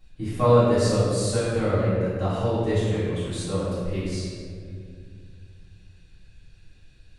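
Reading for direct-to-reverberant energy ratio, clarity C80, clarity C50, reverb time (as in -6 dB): -14.5 dB, -1.0 dB, -3.0 dB, 2.2 s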